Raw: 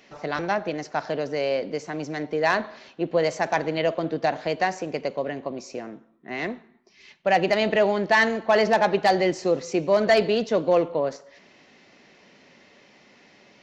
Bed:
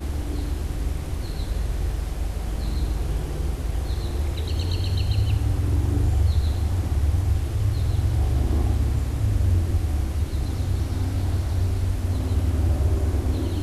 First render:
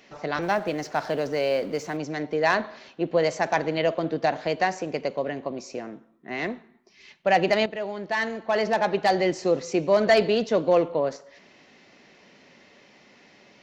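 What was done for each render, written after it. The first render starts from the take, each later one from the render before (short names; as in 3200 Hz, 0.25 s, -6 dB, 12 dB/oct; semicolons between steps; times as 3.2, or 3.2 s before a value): 0.42–1.97 G.711 law mismatch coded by mu; 7.66–9.54 fade in, from -13.5 dB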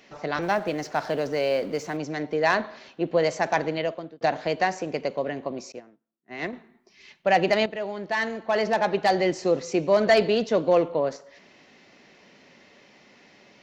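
3.64–4.21 fade out; 5.72–6.53 upward expander 2.5:1, over -45 dBFS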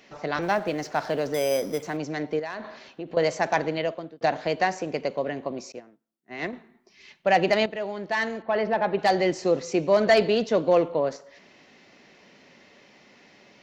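1.34–1.83 careless resampling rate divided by 8×, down filtered, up hold; 2.39–3.17 compressor 5:1, threshold -31 dBFS; 8.42–8.99 air absorption 280 m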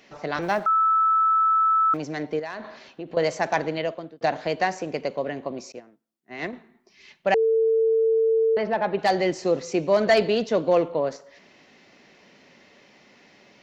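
0.66–1.94 bleep 1310 Hz -16.5 dBFS; 7.34–8.57 bleep 448 Hz -17 dBFS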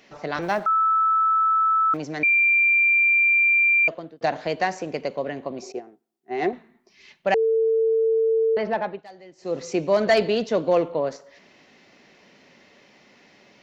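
2.23–3.88 bleep 2370 Hz -15 dBFS; 5.62–6.53 small resonant body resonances 390/740 Hz, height 17 dB, ringing for 60 ms; 8.76–9.64 dip -23 dB, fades 0.27 s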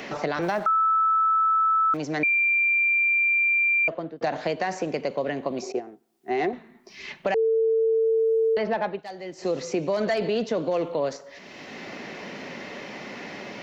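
limiter -17.5 dBFS, peak gain reduction 7 dB; three-band squash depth 70%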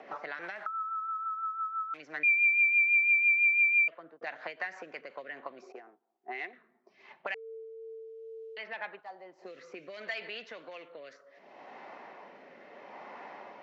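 auto-wah 710–2600 Hz, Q 2.2, up, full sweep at -20 dBFS; rotary speaker horn 6 Hz, later 0.7 Hz, at 4.88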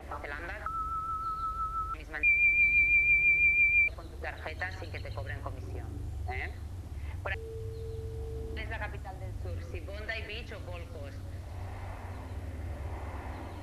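add bed -18 dB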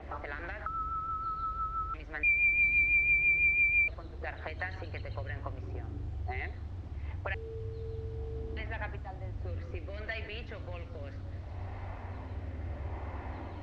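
air absorption 160 m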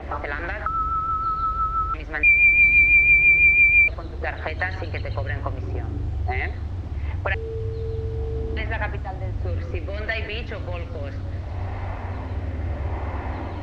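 gain +11.5 dB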